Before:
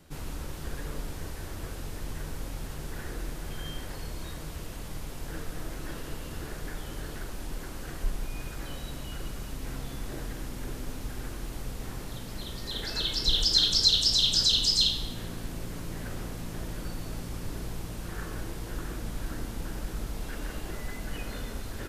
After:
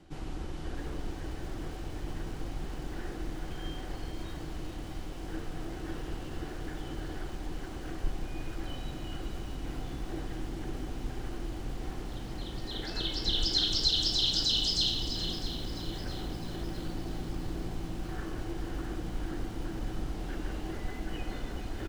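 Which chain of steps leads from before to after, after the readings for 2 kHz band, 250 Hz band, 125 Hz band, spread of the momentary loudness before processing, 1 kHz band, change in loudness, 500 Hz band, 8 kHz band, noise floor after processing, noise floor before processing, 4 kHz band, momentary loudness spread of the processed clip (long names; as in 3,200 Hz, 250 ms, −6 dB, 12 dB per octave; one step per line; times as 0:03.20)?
−3.0 dB, +2.0 dB, −1.0 dB, 19 LU, 0.0 dB, −4.0 dB, 0.0 dB, −8.0 dB, −40 dBFS, −40 dBFS, −4.5 dB, 15 LU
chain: sub-octave generator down 2 octaves, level 0 dB
reversed playback
upward compression, threshold −35 dBFS
reversed playback
high-frequency loss of the air 71 metres
hollow resonant body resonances 330/750/3,000 Hz, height 9 dB
on a send: single-tap delay 428 ms −9 dB
on the sum: feedback echo at a low word length 654 ms, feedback 55%, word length 7 bits, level −12.5 dB
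level −3.5 dB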